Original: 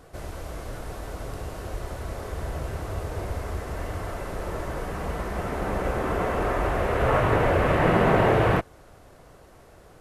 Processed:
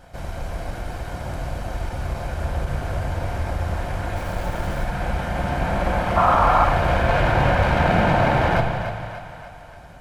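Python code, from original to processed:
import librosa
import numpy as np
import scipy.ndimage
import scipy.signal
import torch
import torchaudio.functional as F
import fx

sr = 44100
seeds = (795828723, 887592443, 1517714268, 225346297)

p1 = fx.lower_of_two(x, sr, delay_ms=1.3)
p2 = fx.high_shelf(p1, sr, hz=6600.0, db=-8.0)
p3 = fx.over_compress(p2, sr, threshold_db=-25.0, ratio=-1.0)
p4 = p2 + (p3 * librosa.db_to_amplitude(1.5))
p5 = fx.vibrato(p4, sr, rate_hz=4.0, depth_cents=7.6)
p6 = fx.echo_split(p5, sr, split_hz=520.0, low_ms=129, high_ms=293, feedback_pct=52, wet_db=-8.5)
p7 = fx.sample_gate(p6, sr, floor_db=-34.5, at=(4.16, 4.85))
p8 = fx.spec_paint(p7, sr, seeds[0], shape='noise', start_s=6.16, length_s=0.49, low_hz=620.0, high_hz=1400.0, level_db=-15.0)
p9 = fx.room_shoebox(p8, sr, seeds[1], volume_m3=860.0, walls='mixed', distance_m=0.89)
p10 = fx.end_taper(p9, sr, db_per_s=270.0)
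y = p10 * librosa.db_to_amplitude(-3.0)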